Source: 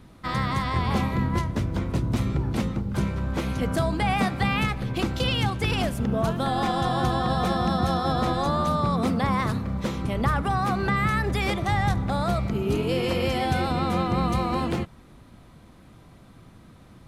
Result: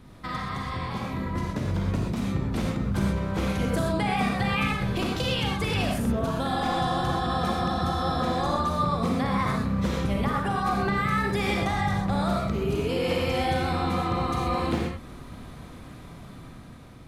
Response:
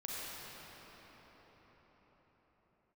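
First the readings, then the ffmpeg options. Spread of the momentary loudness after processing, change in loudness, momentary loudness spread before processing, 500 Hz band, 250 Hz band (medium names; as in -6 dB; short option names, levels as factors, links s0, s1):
13 LU, -1.5 dB, 4 LU, -1.0 dB, -1.0 dB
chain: -filter_complex "[0:a]acompressor=threshold=0.0282:ratio=6[s0];[1:a]atrim=start_sample=2205,atrim=end_sample=6174[s1];[s0][s1]afir=irnorm=-1:irlink=0,dynaudnorm=f=560:g=5:m=2.11,volume=1.68"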